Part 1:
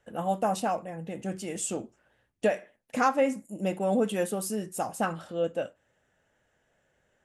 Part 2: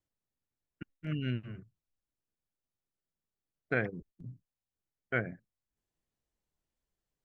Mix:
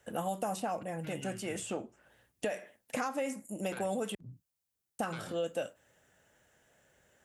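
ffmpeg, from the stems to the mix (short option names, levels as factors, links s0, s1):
-filter_complex "[0:a]alimiter=limit=0.106:level=0:latency=1:release=76,volume=1.33,asplit=3[s0][s1][s2];[s0]atrim=end=4.15,asetpts=PTS-STARTPTS,afade=t=out:st=4.146:d=0.004:c=hsin[s3];[s1]atrim=start=4.15:end=4.99,asetpts=PTS-STARTPTS,volume=0[s4];[s2]atrim=start=4.99,asetpts=PTS-STARTPTS,afade=t=in:d=0.004:c=hsin[s5];[s3][s4][s5]concat=n=3:v=0:a=1[s6];[1:a]acompressor=threshold=0.0158:ratio=6,aeval=exprs='0.0841*sin(PI/2*3.16*val(0)/0.0841)':c=same,volume=0.224[s7];[s6][s7]amix=inputs=2:normalize=0,highpass=43,highshelf=f=5900:g=10.5,acrossover=split=530|3000[s8][s9][s10];[s8]acompressor=threshold=0.0112:ratio=4[s11];[s9]acompressor=threshold=0.0158:ratio=4[s12];[s10]acompressor=threshold=0.00398:ratio=4[s13];[s11][s12][s13]amix=inputs=3:normalize=0"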